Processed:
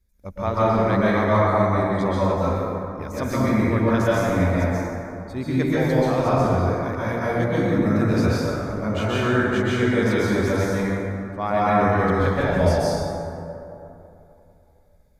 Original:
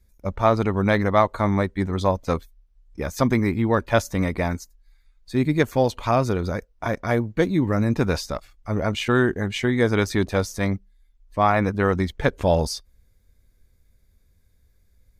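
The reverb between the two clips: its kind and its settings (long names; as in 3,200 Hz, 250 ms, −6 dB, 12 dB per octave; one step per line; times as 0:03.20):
dense smooth reverb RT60 2.9 s, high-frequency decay 0.4×, pre-delay 115 ms, DRR −9 dB
level −8.5 dB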